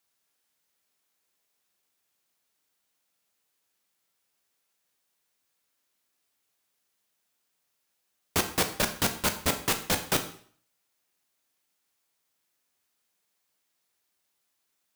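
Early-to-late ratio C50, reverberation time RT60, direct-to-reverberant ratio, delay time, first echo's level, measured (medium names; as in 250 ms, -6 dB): 11.0 dB, 0.50 s, 6.0 dB, no echo, no echo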